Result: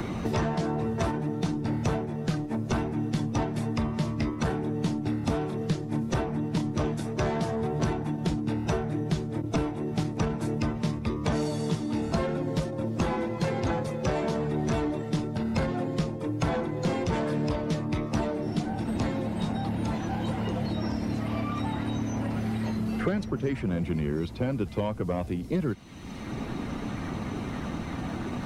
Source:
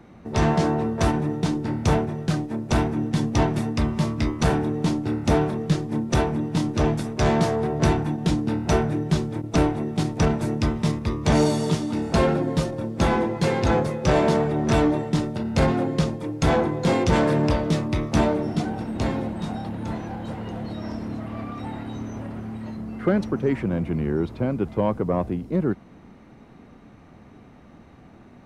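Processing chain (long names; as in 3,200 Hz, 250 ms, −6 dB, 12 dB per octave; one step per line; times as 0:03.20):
spectral magnitudes quantised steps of 15 dB
multiband upward and downward compressor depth 100%
level −6.5 dB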